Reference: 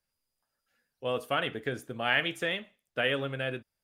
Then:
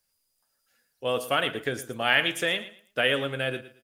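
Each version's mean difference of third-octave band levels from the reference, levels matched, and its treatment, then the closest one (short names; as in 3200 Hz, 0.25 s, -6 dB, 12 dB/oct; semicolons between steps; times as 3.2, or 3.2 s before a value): 3.5 dB: tone controls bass -3 dB, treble +8 dB; on a send: feedback echo 0.113 s, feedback 24%, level -15 dB; on the sum: gain +4 dB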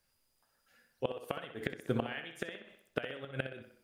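7.0 dB: flipped gate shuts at -24 dBFS, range -24 dB; tape echo 63 ms, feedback 55%, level -8 dB, low-pass 5000 Hz; gain +7.5 dB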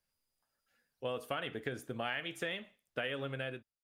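2.5 dB: ending faded out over 0.57 s; compressor 6:1, threshold -33 dBFS, peak gain reduction 11.5 dB; gain -1 dB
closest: third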